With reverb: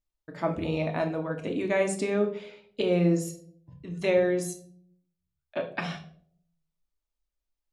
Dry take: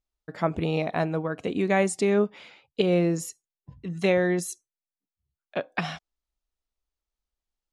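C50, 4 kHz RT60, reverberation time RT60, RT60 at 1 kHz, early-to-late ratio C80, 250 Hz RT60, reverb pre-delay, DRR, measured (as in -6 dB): 10.5 dB, 0.40 s, 0.60 s, 0.45 s, 15.0 dB, 0.75 s, 3 ms, 3.0 dB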